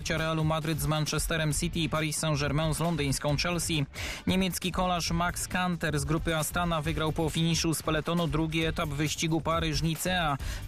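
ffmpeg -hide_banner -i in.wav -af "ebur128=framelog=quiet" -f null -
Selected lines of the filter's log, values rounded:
Integrated loudness:
  I:         -28.8 LUFS
  Threshold: -38.8 LUFS
Loudness range:
  LRA:         0.6 LU
  Threshold: -48.8 LUFS
  LRA low:   -29.1 LUFS
  LRA high:  -28.5 LUFS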